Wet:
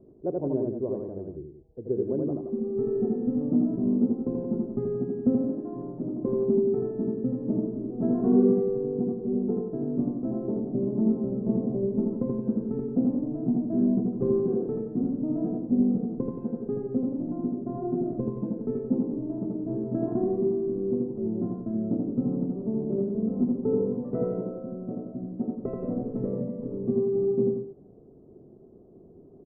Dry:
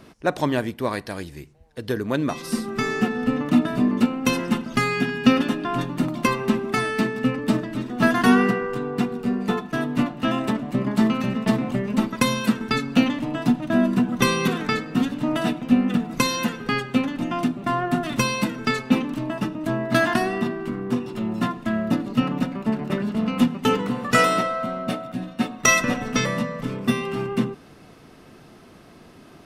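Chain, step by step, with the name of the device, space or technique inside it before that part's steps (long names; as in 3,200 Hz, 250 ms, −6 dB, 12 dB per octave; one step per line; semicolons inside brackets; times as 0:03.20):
0:05.39–0:06.05: low-shelf EQ 280 Hz −7.5 dB
under water (low-pass filter 580 Hz 24 dB per octave; parametric band 390 Hz +9 dB 0.38 octaves)
loudspeakers that aren't time-aligned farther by 28 metres −2 dB, 60 metres −8 dB
level −8 dB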